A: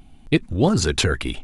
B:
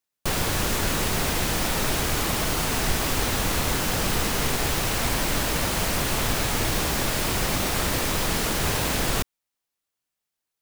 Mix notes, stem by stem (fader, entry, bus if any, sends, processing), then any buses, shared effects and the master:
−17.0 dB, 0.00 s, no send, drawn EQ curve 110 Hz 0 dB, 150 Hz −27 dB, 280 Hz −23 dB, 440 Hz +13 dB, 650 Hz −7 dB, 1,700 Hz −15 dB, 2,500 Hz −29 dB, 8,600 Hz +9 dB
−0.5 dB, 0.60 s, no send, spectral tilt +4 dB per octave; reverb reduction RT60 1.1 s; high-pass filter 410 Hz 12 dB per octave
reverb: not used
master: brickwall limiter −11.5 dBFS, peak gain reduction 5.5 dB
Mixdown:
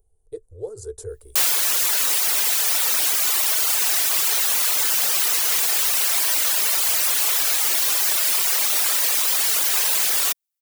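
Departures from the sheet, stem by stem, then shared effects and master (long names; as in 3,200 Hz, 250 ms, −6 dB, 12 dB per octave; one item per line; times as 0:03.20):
stem B: entry 0.60 s → 1.10 s
master: missing brickwall limiter −11.5 dBFS, peak gain reduction 5.5 dB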